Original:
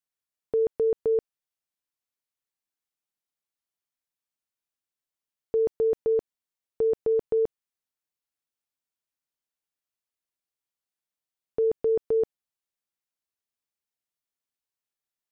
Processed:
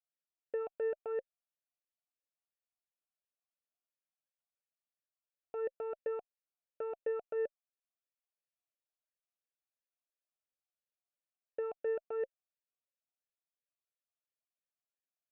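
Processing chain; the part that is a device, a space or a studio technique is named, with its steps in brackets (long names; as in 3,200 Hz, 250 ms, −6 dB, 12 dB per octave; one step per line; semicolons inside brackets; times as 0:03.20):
talk box (tube saturation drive 25 dB, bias 0.6; formant filter swept between two vowels a-e 2.9 Hz)
level +4.5 dB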